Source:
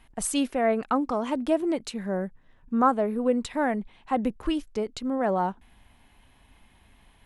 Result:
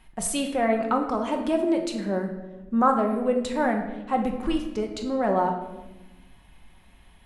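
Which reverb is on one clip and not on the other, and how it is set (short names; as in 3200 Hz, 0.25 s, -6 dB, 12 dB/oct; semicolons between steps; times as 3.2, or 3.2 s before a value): shoebox room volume 490 m³, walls mixed, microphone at 1 m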